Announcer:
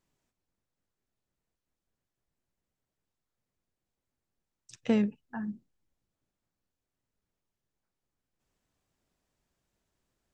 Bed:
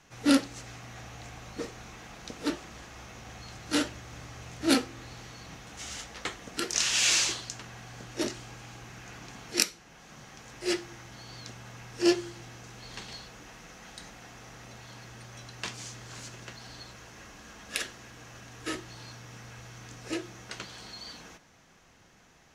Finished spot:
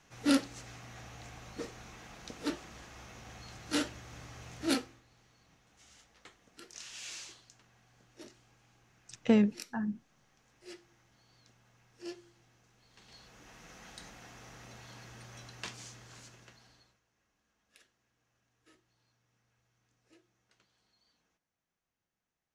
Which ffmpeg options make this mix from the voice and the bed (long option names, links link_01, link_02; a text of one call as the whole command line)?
ffmpeg -i stem1.wav -i stem2.wav -filter_complex "[0:a]adelay=4400,volume=1.5dB[link_01];[1:a]volume=12dB,afade=type=out:start_time=4.61:duration=0.41:silence=0.158489,afade=type=in:start_time=12.95:duration=0.81:silence=0.149624,afade=type=out:start_time=15.36:duration=1.65:silence=0.0473151[link_02];[link_01][link_02]amix=inputs=2:normalize=0" out.wav